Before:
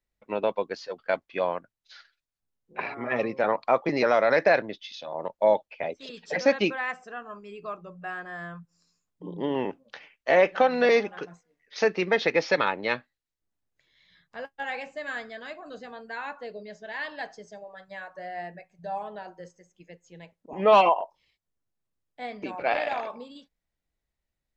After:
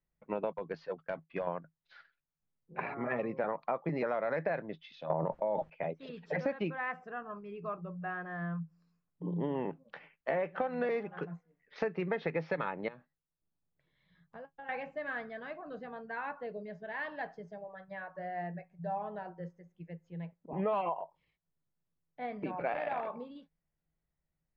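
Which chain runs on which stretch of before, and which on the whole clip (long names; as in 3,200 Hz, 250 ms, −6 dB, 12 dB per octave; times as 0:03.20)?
0:00.53–0:01.47: downward expander −51 dBFS + downward compressor 10 to 1, threshold −26 dBFS + hard clipping −24.5 dBFS
0:05.10–0:05.70: parametric band 4,000 Hz −6 dB 1.5 octaves + envelope flattener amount 100%
0:12.88–0:14.69: parametric band 2,100 Hz −6 dB 1.1 octaves + downward compressor 8 to 1, threshold −41 dBFS
whole clip: low-pass filter 1,900 Hz 12 dB per octave; parametric band 160 Hz +14.5 dB 0.29 octaves; downward compressor 5 to 1, threshold −28 dBFS; level −2.5 dB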